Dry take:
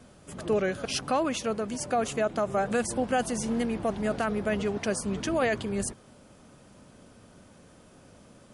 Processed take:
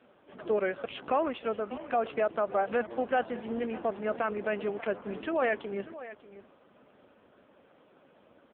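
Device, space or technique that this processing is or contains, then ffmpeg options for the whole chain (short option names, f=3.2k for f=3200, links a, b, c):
satellite phone: -filter_complex "[0:a]asettb=1/sr,asplit=3[a][b][c];[a]atrim=end=1.764[d];[b]atrim=start=1.76:end=2.69,asetpts=PTS-STARTPTS,afade=t=in:d=0.004:c=qsin,afade=t=out:st=0.926:d=0.004:c=qsin,equalizer=f=120:t=o:w=0.34:g=3[e];[c]atrim=start=2.686[f];[d][e]acrossfade=d=0.004:c1=hsin:c2=qsin[g];[g][f]acrossfade=d=0.004:c1=qsin:c2=hsin,highpass=320,lowpass=3.3k,aecho=1:1:592:0.168" -ar 8000 -c:a libopencore_amrnb -b:a 5900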